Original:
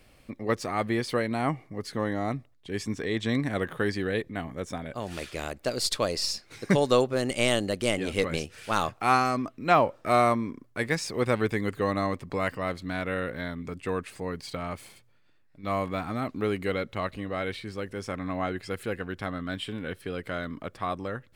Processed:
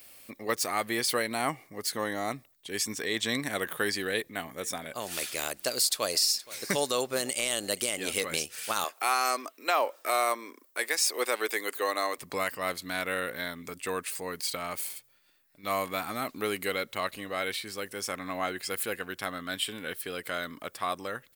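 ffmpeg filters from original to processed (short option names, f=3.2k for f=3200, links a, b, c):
-filter_complex "[0:a]asplit=3[a][b][c];[a]afade=t=out:st=4.58:d=0.02[d];[b]aecho=1:1:471:0.075,afade=t=in:st=4.58:d=0.02,afade=t=out:st=7.84:d=0.02[e];[c]afade=t=in:st=7.84:d=0.02[f];[d][e][f]amix=inputs=3:normalize=0,asettb=1/sr,asplit=3[g][h][i];[g]atrim=end=8.844[j];[h]atrim=start=8.84:end=12.18,asetpts=PTS-STARTPTS,afade=t=in:d=0.004:c=qsin,afade=t=out:st=3.336:d=0.004:c=qsin,highpass=f=330:w=0.5412,highpass=f=330:w=1.3066[k];[i]atrim=start=12.176[l];[j][k]acrossfade=d=0.004:c1=hsin:c2=qsin[m];[m][l]acrossfade=d=0.004:c1=qsin:c2=hsin,aemphasis=mode=production:type=riaa,alimiter=limit=-14dB:level=0:latency=1:release=170"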